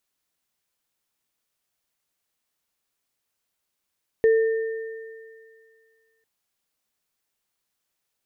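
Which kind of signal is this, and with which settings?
sine partials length 2.00 s, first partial 447 Hz, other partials 1810 Hz, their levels -16 dB, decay 2.04 s, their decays 2.83 s, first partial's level -13 dB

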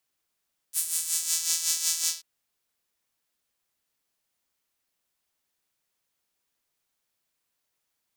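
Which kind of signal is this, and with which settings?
synth patch with tremolo E4, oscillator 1 saw, oscillator 2 saw, interval -12 st, detune 20 cents, filter highpass, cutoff 4900 Hz, Q 1.8, filter envelope 1 oct, filter decay 0.71 s, attack 55 ms, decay 0.10 s, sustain -3 dB, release 0.16 s, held 1.33 s, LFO 5.4 Hz, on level 8.5 dB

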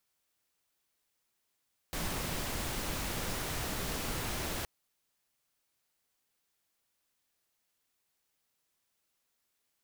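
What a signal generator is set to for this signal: noise pink, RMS -36 dBFS 2.72 s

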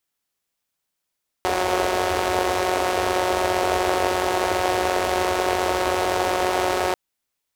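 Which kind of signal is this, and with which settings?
four-cylinder engine model, steady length 5.49 s, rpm 5500, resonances 80/420/630 Hz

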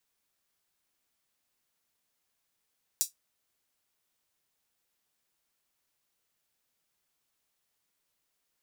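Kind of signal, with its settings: closed hi-hat, high-pass 5900 Hz, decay 0.14 s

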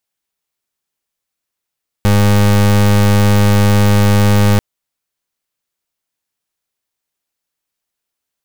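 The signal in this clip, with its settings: pulse 102 Hz, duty 30% -9.5 dBFS 2.54 s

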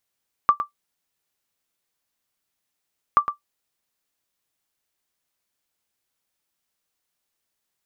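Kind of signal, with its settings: sonar ping 1170 Hz, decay 0.12 s, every 2.68 s, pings 2, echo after 0.11 s, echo -10 dB -6 dBFS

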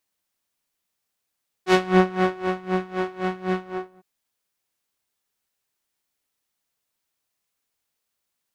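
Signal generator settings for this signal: synth patch with tremolo F#4, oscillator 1 saw, interval -12 st, detune 13 cents, sub -10.5 dB, noise -6 dB, filter lowpass, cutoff 1100 Hz, Q 0.72, filter envelope 2 oct, attack 84 ms, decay 0.79 s, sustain -9.5 dB, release 0.43 s, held 1.93 s, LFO 3.9 Hz, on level 20.5 dB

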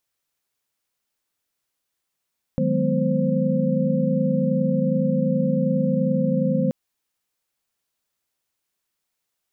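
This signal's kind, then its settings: chord D#3/F#3/G#3/B3/C5 sine, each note -24.5 dBFS 4.13 s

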